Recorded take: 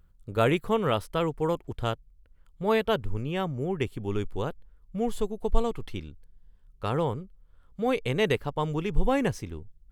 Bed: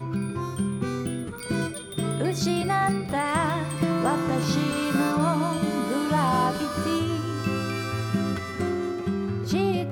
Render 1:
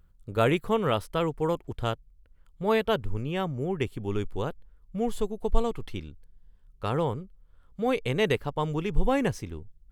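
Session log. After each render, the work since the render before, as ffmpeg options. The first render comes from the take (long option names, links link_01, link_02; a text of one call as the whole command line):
ffmpeg -i in.wav -af anull out.wav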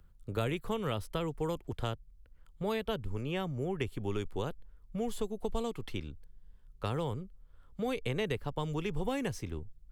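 ffmpeg -i in.wav -filter_complex "[0:a]acrossover=split=87|380|2700[link_01][link_02][link_03][link_04];[link_01]acompressor=threshold=-37dB:ratio=4[link_05];[link_02]acompressor=threshold=-37dB:ratio=4[link_06];[link_03]acompressor=threshold=-37dB:ratio=4[link_07];[link_04]acompressor=threshold=-44dB:ratio=4[link_08];[link_05][link_06][link_07][link_08]amix=inputs=4:normalize=0" out.wav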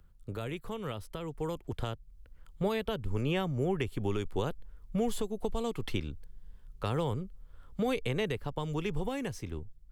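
ffmpeg -i in.wav -af "alimiter=level_in=2.5dB:limit=-24dB:level=0:latency=1:release=345,volume=-2.5dB,dynaudnorm=framelen=780:gausssize=5:maxgain=6dB" out.wav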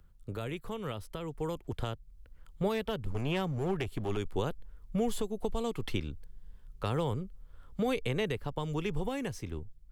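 ffmpeg -i in.wav -filter_complex "[0:a]asettb=1/sr,asplit=3[link_01][link_02][link_03];[link_01]atrim=end=2.694[link_04];[link_02]atrim=start=2.69:end=4.17,asetpts=PTS-STARTPTS,afade=type=in:duration=0.004:curve=qsin,afade=type=out:start_time=1.476:duration=0.004:curve=qsin,aeval=exprs='clip(val(0),-1,0.0299)':channel_layout=same[link_05];[link_03]atrim=start=4.166[link_06];[link_04][link_05]acrossfade=duration=0.004:curve1=hsin:curve2=qsin[link_07];[link_07][link_06]acrossfade=duration=0.004:curve1=qsin:curve2=hsin" out.wav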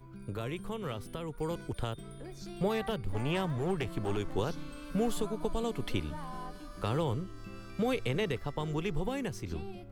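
ffmpeg -i in.wav -i bed.wav -filter_complex "[1:a]volume=-20.5dB[link_01];[0:a][link_01]amix=inputs=2:normalize=0" out.wav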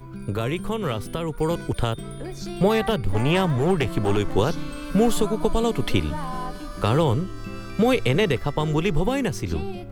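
ffmpeg -i in.wav -af "volume=11.5dB" out.wav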